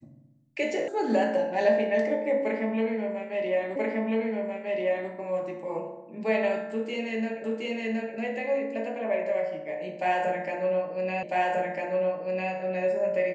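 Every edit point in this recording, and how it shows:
0:00.88: cut off before it has died away
0:03.76: the same again, the last 1.34 s
0:07.44: the same again, the last 0.72 s
0:11.23: the same again, the last 1.3 s

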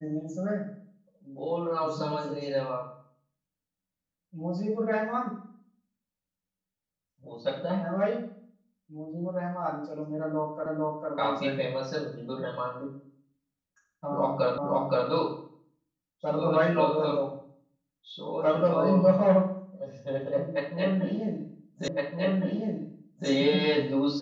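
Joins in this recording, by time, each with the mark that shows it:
0:10.66: the same again, the last 0.45 s
0:14.58: the same again, the last 0.52 s
0:21.88: the same again, the last 1.41 s

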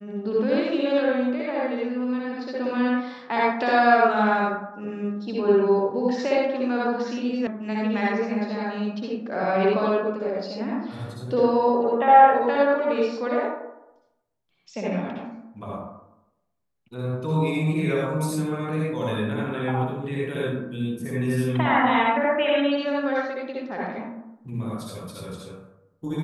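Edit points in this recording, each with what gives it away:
0:07.47: cut off before it has died away

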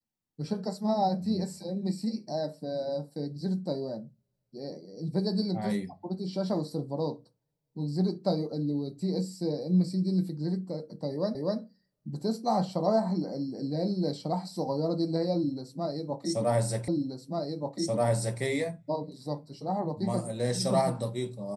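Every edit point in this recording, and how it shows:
0:11.35: the same again, the last 0.25 s
0:16.88: the same again, the last 1.53 s

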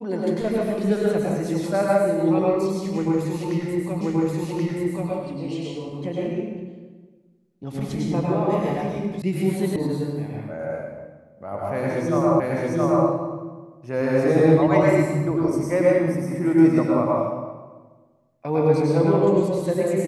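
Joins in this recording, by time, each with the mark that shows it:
0:04.01: the same again, the last 1.08 s
0:09.22: cut off before it has died away
0:09.76: cut off before it has died away
0:12.40: the same again, the last 0.67 s

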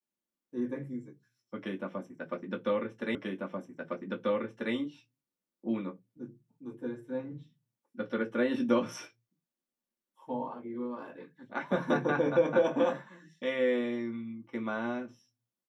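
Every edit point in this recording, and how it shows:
0:03.15: the same again, the last 1.59 s

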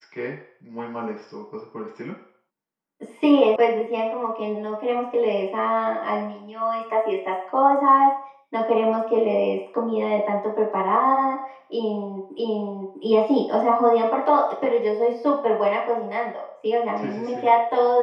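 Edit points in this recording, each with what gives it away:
0:03.56: cut off before it has died away
0:12.39: the same again, the last 0.65 s

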